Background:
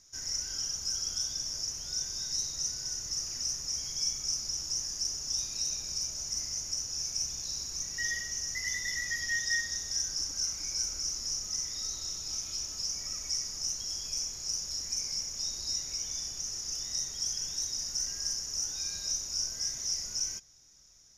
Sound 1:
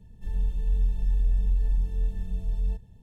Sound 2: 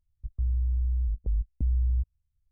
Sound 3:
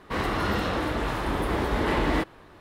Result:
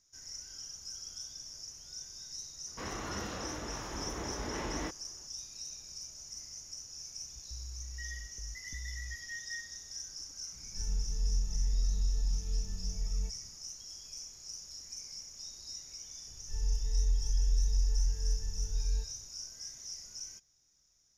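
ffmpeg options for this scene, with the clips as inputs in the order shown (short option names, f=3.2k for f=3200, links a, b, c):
-filter_complex "[1:a]asplit=2[a][b];[0:a]volume=-11dB[c];[b]aecho=1:1:2.2:0.85[d];[3:a]atrim=end=2.6,asetpts=PTS-STARTPTS,volume=-13.5dB,afade=t=in:d=0.004:c=hsin,afade=t=out:st=2.596:d=0.004:c=hsin,adelay=2670[e];[2:a]atrim=end=2.51,asetpts=PTS-STARTPTS,volume=-18dB,afade=t=in:d=0.004:c=hsin,afade=t=out:st=2.506:d=0.004:c=hsin,adelay=7120[f];[a]atrim=end=3.02,asetpts=PTS-STARTPTS,volume=-7dB,afade=t=in:d=0.004:c=hsin,afade=t=out:st=3.016:d=0.004:c=hsin,adelay=10530[g];[d]atrim=end=3.02,asetpts=PTS-STARTPTS,volume=-10dB,afade=t=in:d=0.004:c=hsin,afade=t=out:st=3.016:d=0.004:c=hsin,adelay=16270[h];[c][e][f][g][h]amix=inputs=5:normalize=0"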